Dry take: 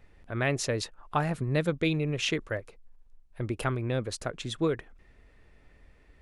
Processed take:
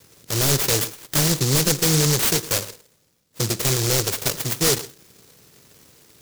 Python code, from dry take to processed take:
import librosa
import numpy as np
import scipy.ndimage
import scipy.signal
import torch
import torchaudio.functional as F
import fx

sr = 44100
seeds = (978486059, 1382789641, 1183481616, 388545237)

y = fx.lower_of_two(x, sr, delay_ms=2.0)
y = scipy.signal.sosfilt(scipy.signal.butter(4, 120.0, 'highpass', fs=sr, output='sos'), y)
y = fx.fold_sine(y, sr, drive_db=10, ceiling_db=-14.0)
y = y + 10.0 ** (-17.0 / 20.0) * np.pad(y, (int(106 * sr / 1000.0), 0))[:len(y)]
y = fx.rev_double_slope(y, sr, seeds[0], early_s=0.54, late_s=2.5, knee_db=-27, drr_db=13.5)
y = fx.noise_mod_delay(y, sr, seeds[1], noise_hz=5600.0, depth_ms=0.38)